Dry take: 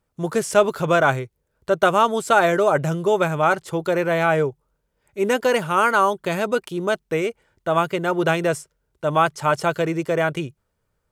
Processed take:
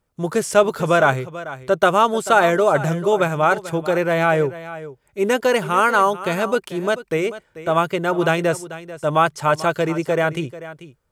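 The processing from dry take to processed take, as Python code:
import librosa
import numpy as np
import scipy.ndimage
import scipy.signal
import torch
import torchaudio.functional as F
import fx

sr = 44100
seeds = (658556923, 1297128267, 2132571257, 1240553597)

y = x + 10.0 ** (-15.0 / 20.0) * np.pad(x, (int(440 * sr / 1000.0), 0))[:len(x)]
y = y * librosa.db_to_amplitude(1.5)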